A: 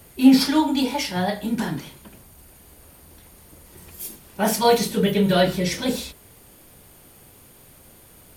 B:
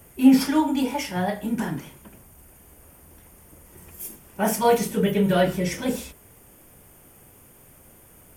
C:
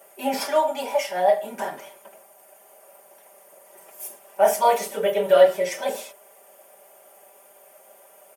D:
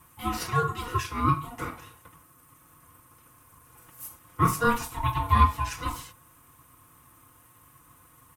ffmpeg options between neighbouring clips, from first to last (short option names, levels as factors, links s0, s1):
-af "equalizer=f=4100:w=2.7:g=-13.5,volume=0.841"
-af "highpass=f=620:t=q:w=4,aecho=1:1:5.1:0.71,volume=0.75"
-af "aeval=exprs='val(0)*sin(2*PI*480*n/s)':c=same,volume=0.794"